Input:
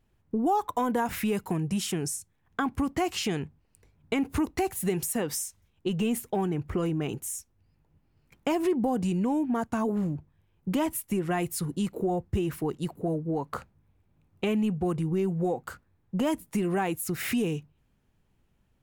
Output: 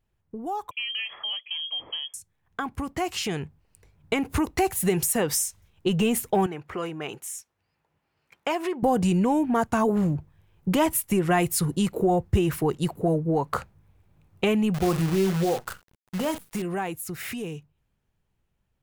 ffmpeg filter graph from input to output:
ffmpeg -i in.wav -filter_complex "[0:a]asettb=1/sr,asplit=3[link_01][link_02][link_03];[link_01]atrim=end=0.714[link_04];[link_02]atrim=start=0.71:end=2.14,asetpts=PTS-STARTPTS,afade=type=in:duration=0.004:curve=qsin,afade=type=out:start_time=1.426:duration=0.004:curve=qsin,bandreject=frequency=1900:width=5.1,lowpass=frequency=2900:width_type=q:width=0.5098,lowpass=frequency=2900:width_type=q:width=0.6013,lowpass=frequency=2900:width_type=q:width=0.9,lowpass=frequency=2900:width_type=q:width=2.563,afreqshift=-3400[link_05];[link_03]atrim=start=2.136[link_06];[link_04][link_05]acrossfade=duration=0.004:curve1=hsin:curve2=qsin[link_07];[link_07][link_06]acrossfade=duration=0.004:curve1=qsin:curve2=hsin,asettb=1/sr,asplit=3[link_08][link_09][link_10];[link_08]atrim=end=6.464[link_11];[link_09]atrim=start=6.46:end=8.83,asetpts=PTS-STARTPTS,afade=type=in:duration=0.004:curve=qsin,afade=type=out:start_time=2.366:duration=0.004:curve=qsin,highpass=frequency=920:poles=1,highshelf=frequency=4800:gain=-10.5[link_12];[link_10]atrim=start=8.826[link_13];[link_11][link_12]acrossfade=duration=0.004:curve1=hsin:curve2=qsin[link_14];[link_14][link_13]acrossfade=duration=0.004:curve1=qsin:curve2=hsin,asettb=1/sr,asplit=3[link_15][link_16][link_17];[link_15]atrim=end=14.744[link_18];[link_16]atrim=start=14.74:end=16.62,asetpts=PTS-STARTPTS,afade=type=in:duration=0.004:curve=qsin,afade=type=out:start_time=1.876:duration=0.004:curve=qsin,asplit=2[link_19][link_20];[link_20]adelay=42,volume=-12dB[link_21];[link_19][link_21]amix=inputs=2:normalize=0,atrim=end_sample=82908,acrusher=bits=7:dc=4:mix=0:aa=0.000001[link_22];[link_17]atrim=start=16.616[link_23];[link_18][link_22]acrossfade=duration=0.004:curve1=hsin:curve2=qsin[link_24];[link_24][link_23]acrossfade=duration=0.004:curve1=qsin:curve2=hsin,equalizer=frequency=260:width_type=o:width=0.83:gain=-5.5,dynaudnorm=framelen=340:gausssize=21:maxgain=13dB,volume=-5dB" out.wav

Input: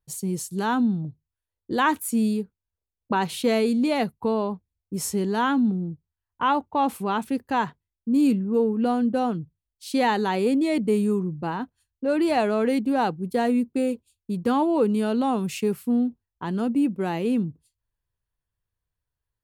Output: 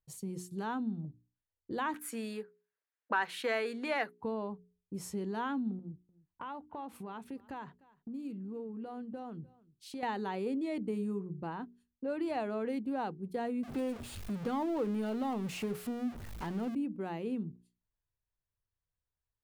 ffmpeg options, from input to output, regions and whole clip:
ffmpeg -i in.wav -filter_complex "[0:a]asettb=1/sr,asplit=3[link_01][link_02][link_03];[link_01]atrim=end=1.944[link_04];[link_02]atrim=start=1.94:end=4.21,asetpts=PTS-STARTPTS,afade=type=in:duration=0.004:curve=qsin,afade=type=out:start_time=2.266:duration=0.004:curve=qsin,highpass=480,equalizer=frequency=1700:width_type=o:width=0.89:gain=13,acontrast=33[link_05];[link_03]atrim=start=4.206[link_06];[link_04][link_05]acrossfade=duration=0.004:curve1=hsin:curve2=qsin[link_07];[link_07][link_06]acrossfade=duration=0.004:curve1=qsin:curve2=hsin,asettb=1/sr,asplit=3[link_08][link_09][link_10];[link_08]atrim=end=5.794[link_11];[link_09]atrim=start=5.79:end=10.03,asetpts=PTS-STARTPTS,afade=type=in:duration=0.004:curve=qsin,afade=type=out:start_time=4.236:duration=0.004:curve=qsin,acompressor=threshold=-33dB:ratio=3:attack=3.2:release=140:knee=1:detection=peak,aecho=1:1:300:0.0631,atrim=end_sample=186984[link_12];[link_10]atrim=start=10.026[link_13];[link_11][link_12]acrossfade=duration=0.004:curve1=hsin:curve2=qsin[link_14];[link_14][link_13]acrossfade=duration=0.004:curve1=qsin:curve2=hsin,asettb=1/sr,asplit=3[link_15][link_16][link_17];[link_15]atrim=end=13.634[link_18];[link_16]atrim=start=13.63:end=16.75,asetpts=PTS-STARTPTS,afade=type=in:duration=0.004:curve=qsin,afade=type=out:start_time=3.116:duration=0.004:curve=qsin,aeval=exprs='val(0)+0.5*0.0447*sgn(val(0))':channel_layout=same,bandreject=frequency=1000:width=24[link_19];[link_17]atrim=start=16.746[link_20];[link_18][link_19]acrossfade=duration=0.004:curve1=hsin:curve2=qsin[link_21];[link_21][link_20]acrossfade=duration=0.004:curve1=qsin:curve2=hsin,highshelf=frequency=3900:gain=-9,bandreject=frequency=60:width_type=h:width=6,bandreject=frequency=120:width_type=h:width=6,bandreject=frequency=180:width_type=h:width=6,bandreject=frequency=240:width_type=h:width=6,bandreject=frequency=300:width_type=h:width=6,bandreject=frequency=360:width_type=h:width=6,bandreject=frequency=420:width_type=h:width=6,acompressor=threshold=-36dB:ratio=1.5,volume=-6.5dB" out.wav

